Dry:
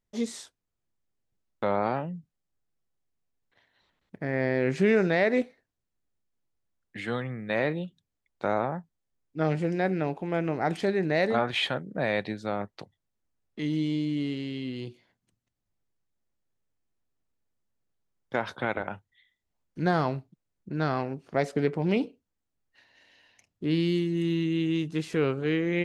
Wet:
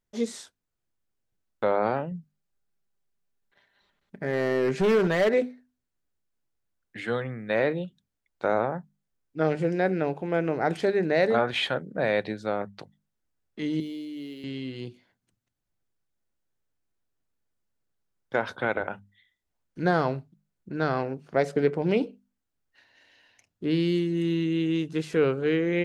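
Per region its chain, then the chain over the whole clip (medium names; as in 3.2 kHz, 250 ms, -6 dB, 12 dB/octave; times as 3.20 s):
2.11–5.34 s: comb 5 ms, depth 41% + hard clipper -20.5 dBFS
13.80–14.44 s: high-pass 350 Hz + peaking EQ 1.2 kHz -12 dB 2.3 oct + decimation joined by straight lines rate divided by 3×
whole clip: peaking EQ 1.5 kHz +4.5 dB 0.22 oct; hum notches 50/100/150/200/250 Hz; dynamic bell 480 Hz, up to +5 dB, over -40 dBFS, Q 2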